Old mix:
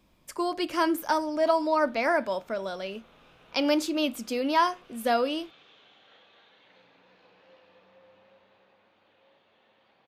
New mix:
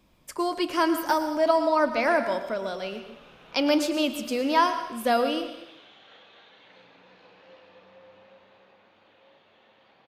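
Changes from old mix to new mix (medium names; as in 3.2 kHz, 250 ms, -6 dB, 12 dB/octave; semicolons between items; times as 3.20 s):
background +4.5 dB; reverb: on, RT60 0.85 s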